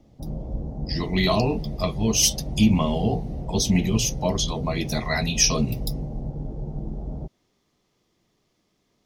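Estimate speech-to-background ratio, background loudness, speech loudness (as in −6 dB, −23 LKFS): 9.5 dB, −33.0 LKFS, −23.5 LKFS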